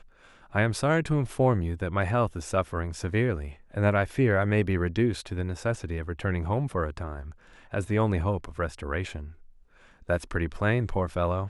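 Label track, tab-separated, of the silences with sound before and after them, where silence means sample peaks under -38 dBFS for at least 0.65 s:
9.310000	10.090000	silence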